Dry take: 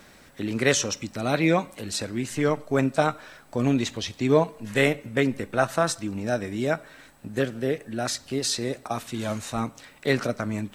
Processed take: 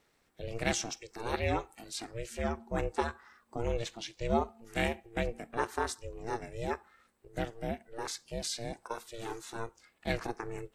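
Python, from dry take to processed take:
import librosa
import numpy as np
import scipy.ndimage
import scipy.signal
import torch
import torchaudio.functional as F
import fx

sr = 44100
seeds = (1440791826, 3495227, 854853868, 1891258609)

y = x * np.sin(2.0 * np.pi * 230.0 * np.arange(len(x)) / sr)
y = fx.noise_reduce_blind(y, sr, reduce_db=10)
y = y * 10.0 ** (-7.0 / 20.0)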